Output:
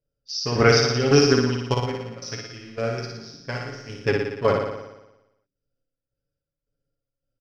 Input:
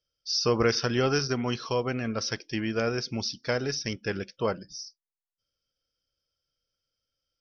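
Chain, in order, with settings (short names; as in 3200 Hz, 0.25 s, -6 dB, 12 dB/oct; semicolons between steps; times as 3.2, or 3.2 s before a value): Wiener smoothing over 41 samples; comb 7.2 ms, depth 68%; chopper 1.8 Hz, depth 65%, duty 50%; 1.74–3.99 resonator 57 Hz, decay 0.74 s, harmonics all, mix 80%; flutter echo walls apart 10 m, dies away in 0.98 s; gain +7 dB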